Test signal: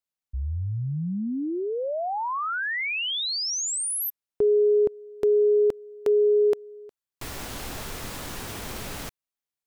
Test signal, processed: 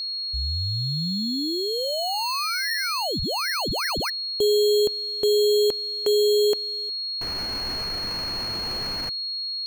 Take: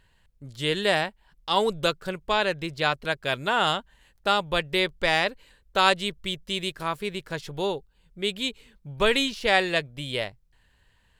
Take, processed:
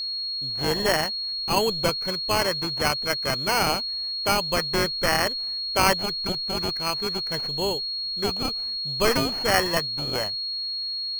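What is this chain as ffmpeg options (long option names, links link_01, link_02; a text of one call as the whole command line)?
ffmpeg -i in.wav -af "acrusher=samples=12:mix=1:aa=0.000001,aeval=exprs='val(0)+0.0447*sin(2*PI*4300*n/s)':channel_layout=same" out.wav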